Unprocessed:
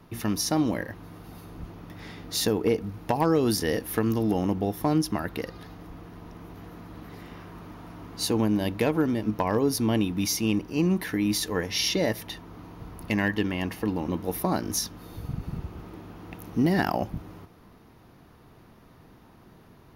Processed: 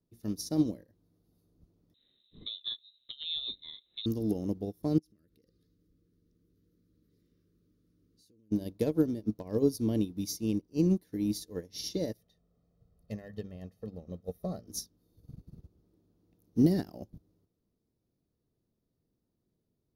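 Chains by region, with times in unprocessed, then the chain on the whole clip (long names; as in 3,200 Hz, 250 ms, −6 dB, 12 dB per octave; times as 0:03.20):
0:01.94–0:04.06: voice inversion scrambler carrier 3,900 Hz + low-shelf EQ 150 Hz +4 dB
0:04.98–0:08.52: Butterworth band-reject 810 Hz, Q 1.1 + downward compressor 20 to 1, threshold −34 dBFS
0:12.17–0:14.67: high-shelf EQ 3,600 Hz −9 dB + mains-hum notches 50/100/150/200/250 Hz + comb filter 1.6 ms, depth 80%
whole clip: flat-topped bell 1,500 Hz −14.5 dB 2.3 octaves; expander for the loud parts 2.5 to 1, over −38 dBFS; level +1 dB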